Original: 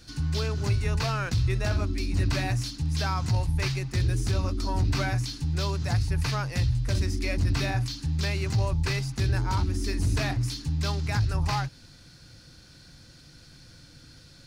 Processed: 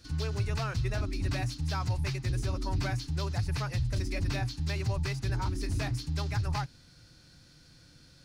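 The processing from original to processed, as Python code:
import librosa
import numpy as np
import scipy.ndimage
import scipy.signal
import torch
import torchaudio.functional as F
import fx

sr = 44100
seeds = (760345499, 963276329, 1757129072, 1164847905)

y = fx.stretch_vocoder(x, sr, factor=0.57)
y = y * librosa.db_to_amplitude(-4.0)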